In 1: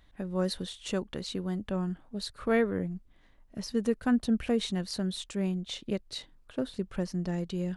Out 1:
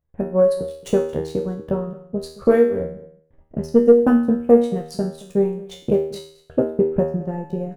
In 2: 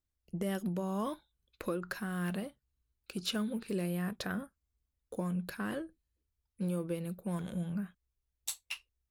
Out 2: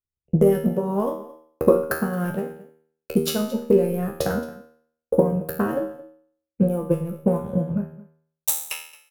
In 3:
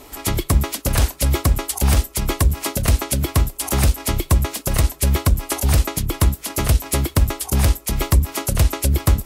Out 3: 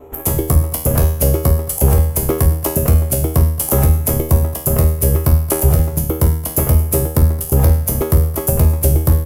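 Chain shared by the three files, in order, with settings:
adaptive Wiener filter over 9 samples
noise gate with hold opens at −51 dBFS
high-shelf EQ 4,400 Hz +9.5 dB
transient designer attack +10 dB, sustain −12 dB
graphic EQ with 10 bands 125 Hz +9 dB, 500 Hz +8 dB, 2,000 Hz −6 dB, 4,000 Hz −12 dB, 8,000 Hz −9 dB
brickwall limiter −1 dBFS
tuned comb filter 79 Hz, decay 0.57 s, harmonics all, mix 90%
soft clipping −13 dBFS
double-tracking delay 15 ms −11.5 dB
single-tap delay 222 ms −19.5 dB
normalise the peak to −2 dBFS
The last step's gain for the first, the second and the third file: +13.0, +18.5, +10.5 decibels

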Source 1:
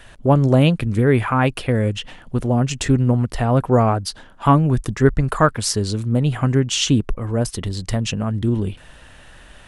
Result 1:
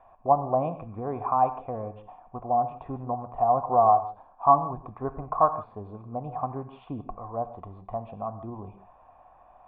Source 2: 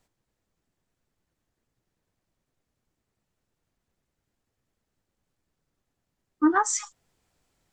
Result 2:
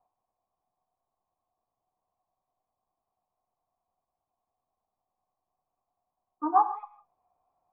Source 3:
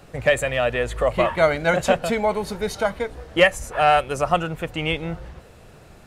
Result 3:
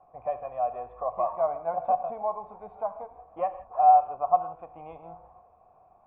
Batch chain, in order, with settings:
dynamic equaliser 2,200 Hz, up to −5 dB, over −38 dBFS, Q 1.4
formant resonators in series a
reverb whose tail is shaped and stops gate 190 ms flat, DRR 10 dB
loudness normalisation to −27 LKFS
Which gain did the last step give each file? +7.5, +12.5, +2.5 decibels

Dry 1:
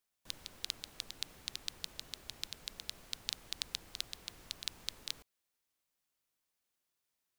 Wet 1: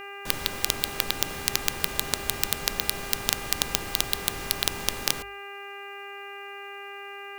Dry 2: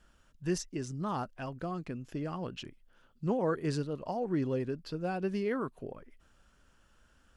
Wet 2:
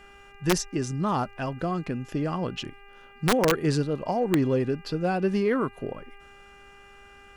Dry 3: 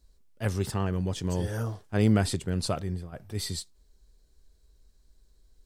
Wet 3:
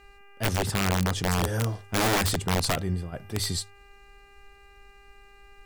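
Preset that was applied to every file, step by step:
hum with harmonics 400 Hz, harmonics 7, −61 dBFS −1 dB per octave
in parallel at −7 dB: soft clipping −27.5 dBFS
on the sum: mains-hum notches 50/100 Hz
wrap-around overflow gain 20 dB
loudness normalisation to −27 LKFS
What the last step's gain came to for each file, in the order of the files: +18.0, +5.5, +2.0 decibels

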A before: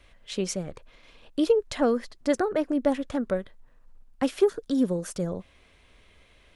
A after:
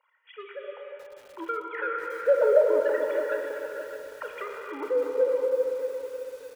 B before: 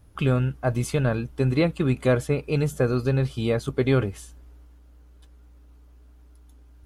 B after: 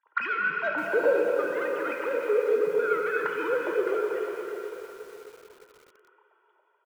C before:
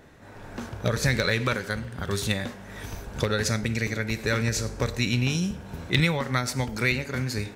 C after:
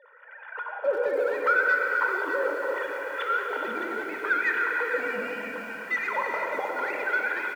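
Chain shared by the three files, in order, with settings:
three sine waves on the formant tracks
comb filter 2.1 ms, depth 72%
dynamic equaliser 1,600 Hz, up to +5 dB, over −43 dBFS, Q 1.7
automatic gain control gain up to 5 dB
in parallel at −0.5 dB: brickwall limiter −10.5 dBFS
on the sum: downward compressor 8 to 1, threshold −15 dBFS
soft clipping −18.5 dBFS
LFO wah 0.73 Hz 560–1,700 Hz, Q 3.3
delay that swaps between a low-pass and a high-pass 246 ms, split 1,200 Hz, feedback 61%, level −7 dB
reverb whose tail is shaped and stops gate 490 ms flat, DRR 1 dB
feedback echo at a low word length 613 ms, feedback 35%, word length 8 bits, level −10.5 dB
loudness normalisation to −27 LKFS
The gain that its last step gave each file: +4.5, +4.0, +2.0 decibels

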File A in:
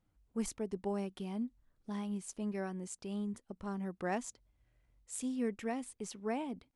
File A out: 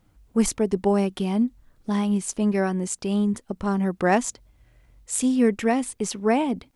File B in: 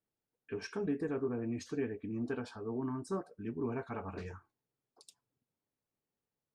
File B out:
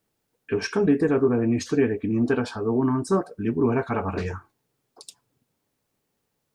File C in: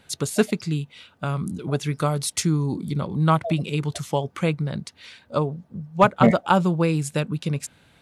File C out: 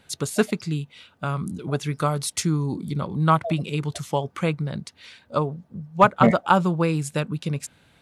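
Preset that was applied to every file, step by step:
dynamic equaliser 1,200 Hz, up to +4 dB, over −36 dBFS, Q 1.3
loudness normalisation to −24 LKFS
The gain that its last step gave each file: +16.0, +15.0, −1.5 decibels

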